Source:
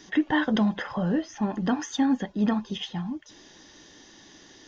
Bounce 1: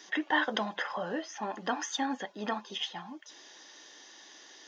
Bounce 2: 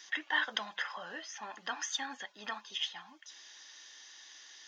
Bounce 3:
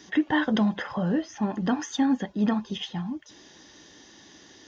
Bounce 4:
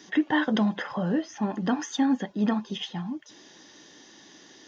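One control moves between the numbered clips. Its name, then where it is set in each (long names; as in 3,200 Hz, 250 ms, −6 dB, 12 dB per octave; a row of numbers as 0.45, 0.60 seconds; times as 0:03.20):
high-pass filter, corner frequency: 550, 1,400, 49, 150 Hertz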